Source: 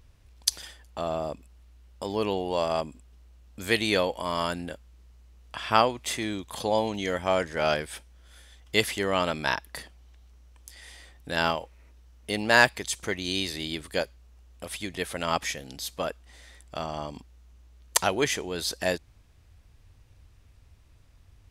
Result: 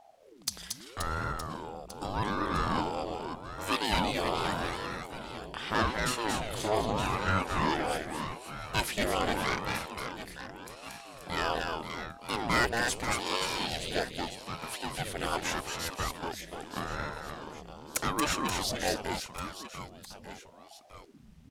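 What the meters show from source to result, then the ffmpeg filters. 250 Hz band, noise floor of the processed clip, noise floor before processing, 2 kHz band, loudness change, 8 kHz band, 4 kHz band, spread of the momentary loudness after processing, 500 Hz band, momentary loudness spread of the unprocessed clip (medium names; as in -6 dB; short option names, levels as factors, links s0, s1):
-2.0 dB, -54 dBFS, -57 dBFS, -4.5 dB, -4.5 dB, -3.5 dB, -3.0 dB, 14 LU, -6.0 dB, 18 LU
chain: -af "asoftclip=type=tanh:threshold=0.133,aecho=1:1:230|529|917.7|1423|2080:0.631|0.398|0.251|0.158|0.1,aeval=exprs='val(0)*sin(2*PI*430*n/s+430*0.75/0.82*sin(2*PI*0.82*n/s))':c=same"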